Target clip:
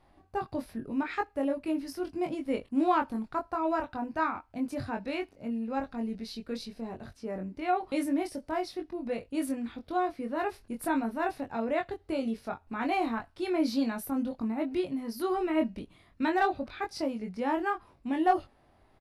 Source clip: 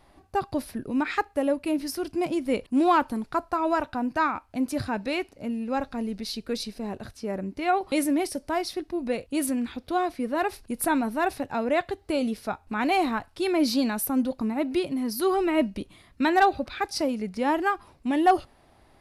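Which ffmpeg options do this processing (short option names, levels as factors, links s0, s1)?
-filter_complex "[0:a]highshelf=f=4000:g=-8.5,asplit=2[s0][s1];[s1]adelay=22,volume=0.631[s2];[s0][s2]amix=inputs=2:normalize=0,volume=0.473"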